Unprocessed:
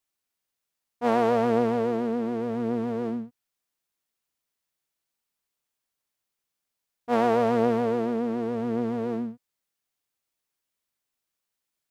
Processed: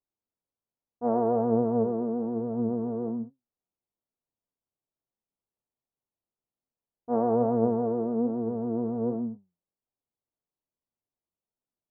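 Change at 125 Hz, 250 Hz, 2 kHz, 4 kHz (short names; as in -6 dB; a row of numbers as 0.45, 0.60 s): +0.5 dB, -0.5 dB, under -20 dB, under -35 dB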